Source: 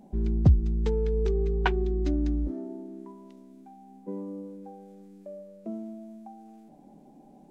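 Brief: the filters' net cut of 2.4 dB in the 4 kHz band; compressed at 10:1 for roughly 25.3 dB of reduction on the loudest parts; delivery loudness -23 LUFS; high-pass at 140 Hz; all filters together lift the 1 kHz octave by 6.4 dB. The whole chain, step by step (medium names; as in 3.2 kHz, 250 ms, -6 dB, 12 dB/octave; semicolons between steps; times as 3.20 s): high-pass 140 Hz; peaking EQ 1 kHz +8 dB; peaking EQ 4 kHz -4.5 dB; compression 10:1, threshold -44 dBFS; trim +25.5 dB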